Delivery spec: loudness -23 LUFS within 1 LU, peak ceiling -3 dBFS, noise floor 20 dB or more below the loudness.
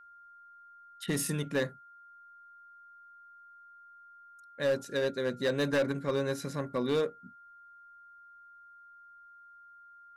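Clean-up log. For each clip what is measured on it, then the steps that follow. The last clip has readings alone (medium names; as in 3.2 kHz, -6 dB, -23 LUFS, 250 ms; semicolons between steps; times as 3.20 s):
clipped samples 0.8%; clipping level -23.0 dBFS; steady tone 1.4 kHz; tone level -52 dBFS; loudness -32.0 LUFS; peak level -23.0 dBFS; loudness target -23.0 LUFS
-> clip repair -23 dBFS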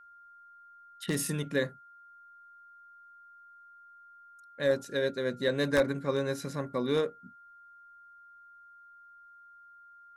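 clipped samples 0.0%; steady tone 1.4 kHz; tone level -52 dBFS
-> band-stop 1.4 kHz, Q 30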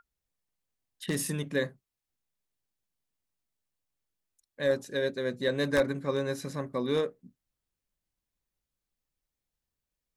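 steady tone not found; loudness -31.0 LUFS; peak level -13.5 dBFS; loudness target -23.0 LUFS
-> trim +8 dB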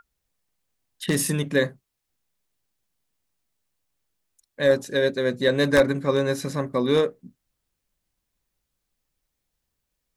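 loudness -23.0 LUFS; peak level -5.5 dBFS; noise floor -80 dBFS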